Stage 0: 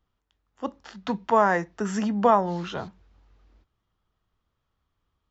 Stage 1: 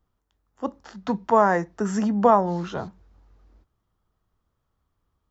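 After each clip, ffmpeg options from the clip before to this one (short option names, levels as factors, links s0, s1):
-af "equalizer=f=2900:w=0.85:g=-8,volume=1.41"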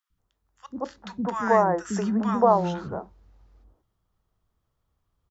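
-filter_complex "[0:a]acrossover=split=290|1300[s0][s1][s2];[s0]adelay=100[s3];[s1]adelay=180[s4];[s3][s4][s2]amix=inputs=3:normalize=0"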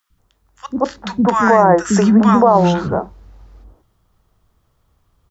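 -af "alimiter=level_in=5.62:limit=0.891:release=50:level=0:latency=1,volume=0.891"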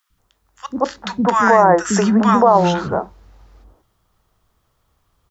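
-af "lowshelf=f=450:g=-6.5,volume=1.19"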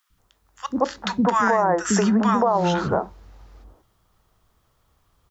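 -af "acompressor=threshold=0.158:ratio=5"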